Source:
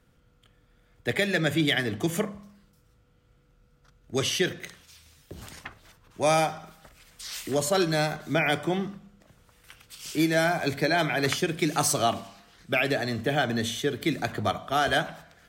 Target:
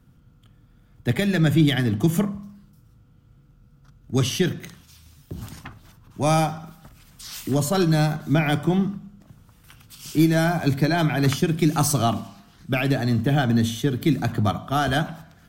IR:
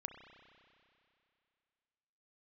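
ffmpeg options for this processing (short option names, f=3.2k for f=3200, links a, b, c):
-af "aeval=exprs='0.282*(cos(1*acos(clip(val(0)/0.282,-1,1)))-cos(1*PI/2))+0.00794*(cos(4*acos(clip(val(0)/0.282,-1,1)))-cos(4*PI/2))':c=same,equalizer=f=125:t=o:w=1:g=6,equalizer=f=250:t=o:w=1:g=4,equalizer=f=500:t=o:w=1:g=-9,equalizer=f=2k:t=o:w=1:g=-8,equalizer=f=4k:t=o:w=1:g=-4,equalizer=f=8k:t=o:w=1:g=-5,volume=6dB"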